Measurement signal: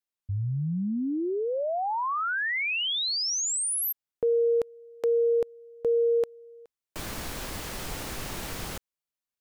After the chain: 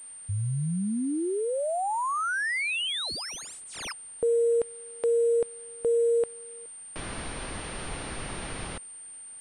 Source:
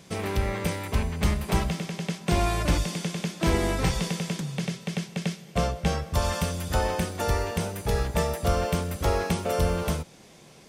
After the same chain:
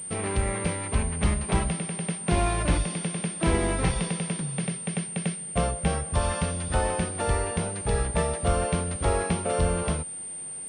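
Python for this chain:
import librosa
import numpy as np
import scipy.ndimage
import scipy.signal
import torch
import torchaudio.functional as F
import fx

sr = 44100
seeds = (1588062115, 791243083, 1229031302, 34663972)

y = fx.quant_dither(x, sr, seeds[0], bits=10, dither='triangular')
y = fx.pwm(y, sr, carrier_hz=8900.0)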